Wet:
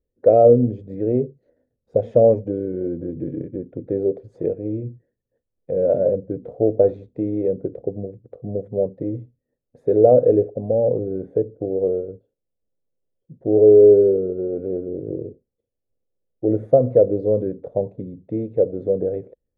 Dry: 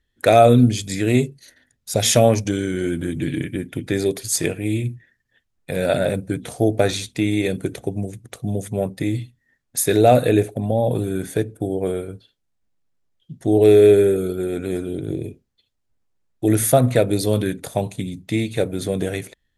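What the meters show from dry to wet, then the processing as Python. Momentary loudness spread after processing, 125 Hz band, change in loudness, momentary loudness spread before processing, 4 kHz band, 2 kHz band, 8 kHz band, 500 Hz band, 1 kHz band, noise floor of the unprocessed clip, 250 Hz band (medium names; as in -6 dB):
17 LU, -6.5 dB, +0.5 dB, 14 LU, under -40 dB, under -25 dB, under -40 dB, +2.5 dB, -7.0 dB, -72 dBFS, -3.5 dB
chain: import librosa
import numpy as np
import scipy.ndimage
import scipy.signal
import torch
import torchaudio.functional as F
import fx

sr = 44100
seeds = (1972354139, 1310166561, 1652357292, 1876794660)

y = fx.lowpass_res(x, sr, hz=510.0, q=5.0)
y = y * 10.0 ** (-7.0 / 20.0)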